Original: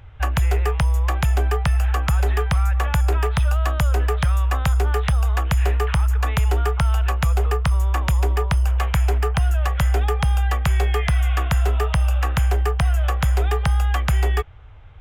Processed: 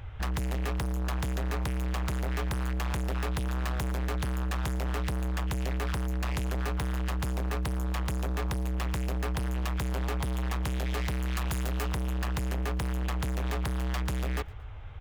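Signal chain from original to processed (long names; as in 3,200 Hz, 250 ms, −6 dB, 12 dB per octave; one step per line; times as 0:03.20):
0:11.28–0:11.89: high-shelf EQ 3,900 Hz +8 dB
gain into a clipping stage and back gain 30.5 dB
repeating echo 115 ms, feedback 38%, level −24 dB
level +1.5 dB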